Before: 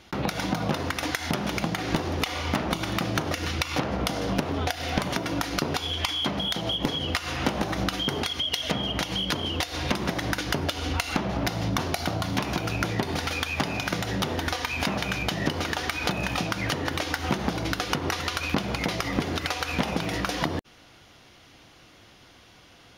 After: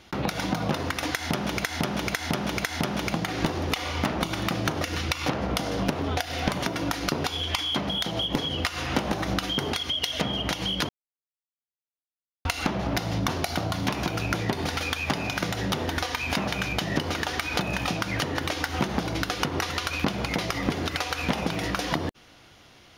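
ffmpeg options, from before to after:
ffmpeg -i in.wav -filter_complex "[0:a]asplit=6[link_01][link_02][link_03][link_04][link_05][link_06];[link_01]atrim=end=1.642[link_07];[link_02]atrim=start=1.138:end=1.642[link_08];[link_03]atrim=start=1.138:end=1.642[link_09];[link_04]atrim=start=1.138:end=9.39,asetpts=PTS-STARTPTS,afade=type=out:start_time=8.248:duration=0.004:curve=hsin[link_10];[link_05]atrim=start=9.39:end=10.95,asetpts=PTS-STARTPTS,volume=0[link_11];[link_06]atrim=start=10.95,asetpts=PTS-STARTPTS,afade=type=in:duration=0.004:curve=hsin[link_12];[link_07][link_08]acrossfade=duration=0.004:curve1=hsin:curve2=hsin[link_13];[link_13][link_09]acrossfade=duration=0.004:curve1=hsin:curve2=hsin[link_14];[link_10][link_11][link_12]concat=n=3:v=0:a=1[link_15];[link_14][link_15]acrossfade=duration=0.004:curve1=hsin:curve2=hsin" out.wav

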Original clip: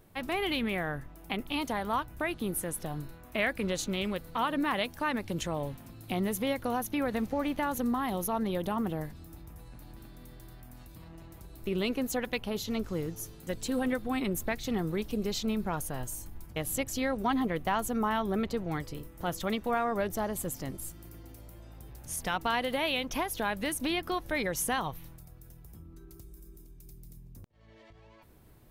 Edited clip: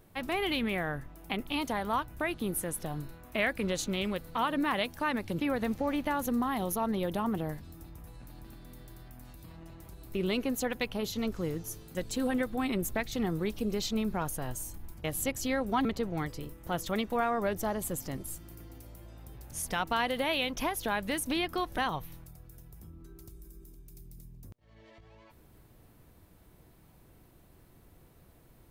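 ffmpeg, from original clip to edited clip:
ffmpeg -i in.wav -filter_complex "[0:a]asplit=4[link_01][link_02][link_03][link_04];[link_01]atrim=end=5.402[link_05];[link_02]atrim=start=6.918:end=17.372[link_06];[link_03]atrim=start=18.388:end=24.322[link_07];[link_04]atrim=start=24.698[link_08];[link_05][link_06]acrossfade=duration=0.004:curve1=hsin:curve2=hsin[link_09];[link_09][link_07]acrossfade=duration=0.004:curve1=hsin:curve2=hsin[link_10];[link_10][link_08]acrossfade=duration=0.004:curve1=hsin:curve2=hsin" out.wav

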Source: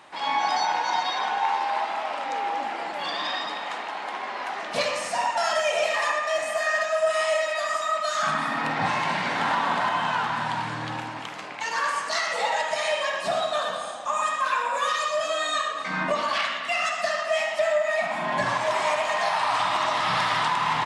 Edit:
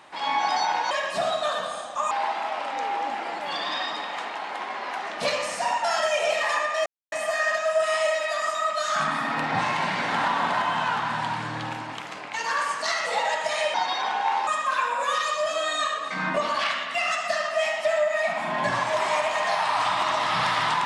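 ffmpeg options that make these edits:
ffmpeg -i in.wav -filter_complex "[0:a]asplit=6[link_01][link_02][link_03][link_04][link_05][link_06];[link_01]atrim=end=0.912[link_07];[link_02]atrim=start=13.008:end=14.212[link_08];[link_03]atrim=start=1.638:end=6.39,asetpts=PTS-STARTPTS,afade=type=out:start_time=4.748:duration=0.004:curve=hsin,apad=pad_dur=0.26[link_09];[link_04]atrim=start=6.39:end=13.012,asetpts=PTS-STARTPTS,afade=type=in:duration=0.004:curve=hsin[link_10];[link_05]atrim=start=0.908:end=1.642[link_11];[link_06]atrim=start=14.208[link_12];[link_07][link_08]acrossfade=duration=0.004:curve1=hsin:curve2=hsin[link_13];[link_09][link_10]concat=n=2:v=0:a=1[link_14];[link_13][link_14]acrossfade=duration=0.004:curve1=hsin:curve2=hsin[link_15];[link_15][link_11]acrossfade=duration=0.004:curve1=hsin:curve2=hsin[link_16];[link_16][link_12]acrossfade=duration=0.004:curve1=hsin:curve2=hsin" out.wav

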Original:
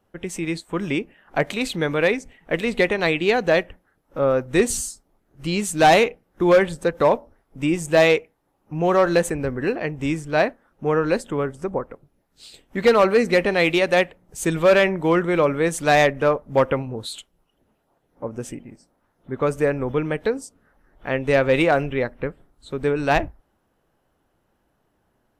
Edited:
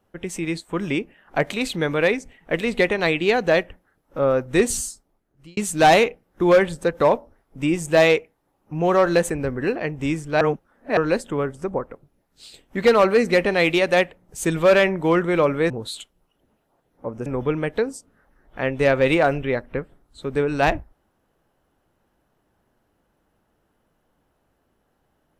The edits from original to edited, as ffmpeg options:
ffmpeg -i in.wav -filter_complex "[0:a]asplit=6[link_01][link_02][link_03][link_04][link_05][link_06];[link_01]atrim=end=5.57,asetpts=PTS-STARTPTS,afade=type=out:start_time=4.85:duration=0.72[link_07];[link_02]atrim=start=5.57:end=10.412,asetpts=PTS-STARTPTS,afade=type=in:duration=0.004:curve=hsin[link_08];[link_03]atrim=start=10.408:end=10.972,asetpts=PTS-STARTPTS,areverse[link_09];[link_04]atrim=start=10.968:end=15.702[link_10];[link_05]atrim=start=16.878:end=18.442[link_11];[link_06]atrim=start=19.738[link_12];[link_07][link_08]concat=n=2:v=0:a=1[link_13];[link_13][link_09]acrossfade=duration=0.004:curve1=hsin:curve2=hsin[link_14];[link_14][link_10]acrossfade=duration=0.004:curve1=hsin:curve2=hsin[link_15];[link_15][link_11]acrossfade=duration=0.004:curve1=hsin:curve2=hsin[link_16];[link_16][link_12]acrossfade=duration=0.004:curve1=hsin:curve2=hsin" out.wav

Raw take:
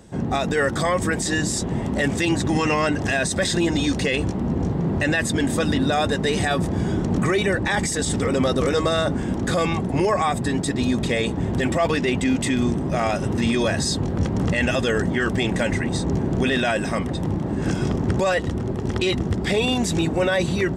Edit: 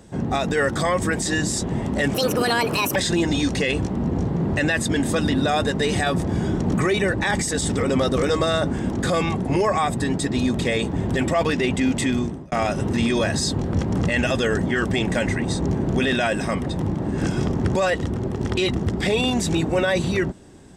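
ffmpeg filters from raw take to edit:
ffmpeg -i in.wav -filter_complex "[0:a]asplit=4[link_01][link_02][link_03][link_04];[link_01]atrim=end=2.144[link_05];[link_02]atrim=start=2.14:end=3.4,asetpts=PTS-STARTPTS,asetrate=67914,aresample=44100[link_06];[link_03]atrim=start=3.396:end=12.96,asetpts=PTS-STARTPTS,afade=type=out:start_time=9.154:duration=0.41[link_07];[link_04]atrim=start=12.96,asetpts=PTS-STARTPTS,afade=type=in:duration=0.004:curve=hsin[link_08];[link_05][link_06]acrossfade=duration=0.004:curve1=hsin:curve2=hsin[link_09];[link_07][link_08]concat=n=2:v=0:a=1[link_10];[link_09][link_10]acrossfade=duration=0.004:curve1=hsin:curve2=hsin" out.wav

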